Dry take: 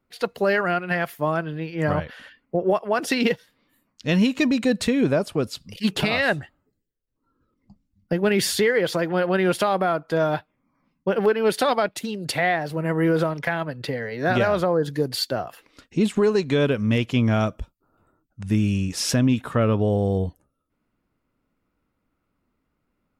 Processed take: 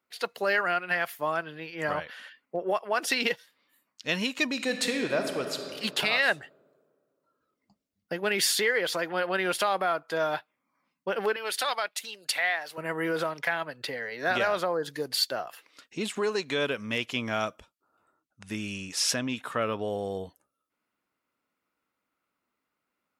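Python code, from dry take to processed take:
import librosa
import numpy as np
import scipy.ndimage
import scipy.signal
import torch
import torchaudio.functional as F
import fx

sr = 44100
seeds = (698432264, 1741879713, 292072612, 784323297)

y = fx.reverb_throw(x, sr, start_s=4.53, length_s=1.06, rt60_s=2.4, drr_db=4.5)
y = fx.highpass(y, sr, hz=1100.0, slope=6, at=(11.36, 12.78))
y = fx.bessel_lowpass(y, sr, hz=12000.0, order=2, at=(17.57, 19.46))
y = fx.highpass(y, sr, hz=1100.0, slope=6)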